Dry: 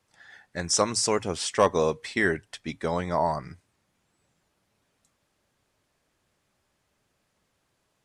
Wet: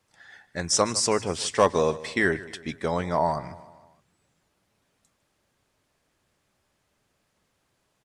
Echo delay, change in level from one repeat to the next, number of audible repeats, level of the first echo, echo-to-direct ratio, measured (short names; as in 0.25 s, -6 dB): 0.153 s, -5.5 dB, 4, -18.0 dB, -16.5 dB